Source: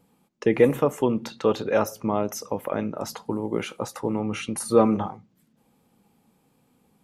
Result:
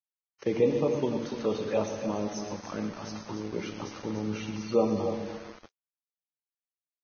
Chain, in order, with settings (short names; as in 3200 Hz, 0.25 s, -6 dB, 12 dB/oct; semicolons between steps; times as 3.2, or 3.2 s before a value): envelope flanger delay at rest 3.3 ms, full sweep at -20 dBFS; loudspeakers at several distances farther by 41 m -11 dB, 99 m -9 dB; on a send at -6 dB: reverb RT60 2.1 s, pre-delay 5 ms; on the sum: sample gate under -34.5 dBFS; gain -6.5 dB; Vorbis 16 kbps 16000 Hz